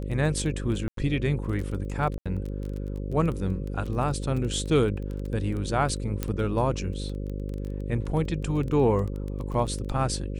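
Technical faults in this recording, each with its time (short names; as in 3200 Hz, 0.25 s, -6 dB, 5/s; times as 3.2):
buzz 50 Hz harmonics 11 -32 dBFS
crackle 13/s -31 dBFS
0.88–0.97 gap 93 ms
2.18–2.26 gap 76 ms
6.23 pop -13 dBFS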